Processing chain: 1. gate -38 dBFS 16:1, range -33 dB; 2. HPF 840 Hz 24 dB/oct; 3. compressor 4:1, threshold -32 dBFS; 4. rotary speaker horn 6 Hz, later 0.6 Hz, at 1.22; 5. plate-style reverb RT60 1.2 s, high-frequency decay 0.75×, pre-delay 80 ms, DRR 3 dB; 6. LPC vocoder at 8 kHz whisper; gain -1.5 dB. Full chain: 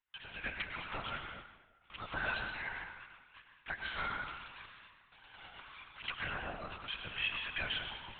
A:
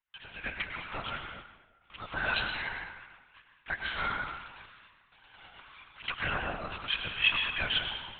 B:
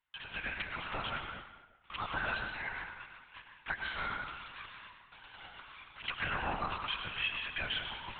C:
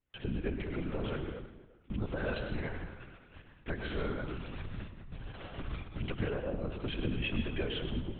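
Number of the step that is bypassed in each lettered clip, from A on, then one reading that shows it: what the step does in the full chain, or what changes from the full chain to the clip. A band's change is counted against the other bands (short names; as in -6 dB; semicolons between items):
3, crest factor change +5.5 dB; 4, 1 kHz band +2.0 dB; 2, 250 Hz band +19.5 dB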